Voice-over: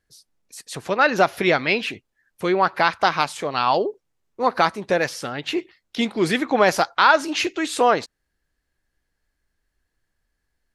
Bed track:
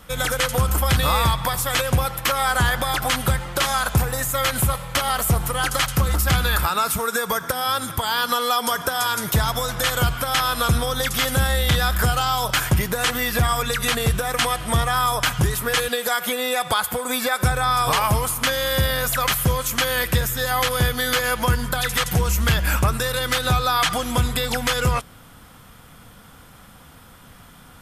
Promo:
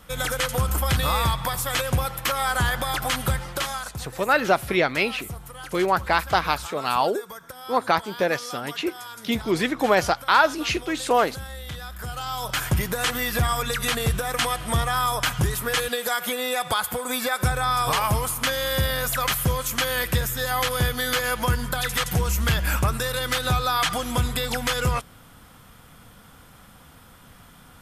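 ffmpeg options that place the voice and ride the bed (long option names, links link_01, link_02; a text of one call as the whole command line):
ffmpeg -i stem1.wav -i stem2.wav -filter_complex "[0:a]adelay=3300,volume=-2.5dB[link_01];[1:a]volume=10dB,afade=type=out:start_time=3.45:duration=0.5:silence=0.223872,afade=type=in:start_time=11.99:duration=0.83:silence=0.211349[link_02];[link_01][link_02]amix=inputs=2:normalize=0" out.wav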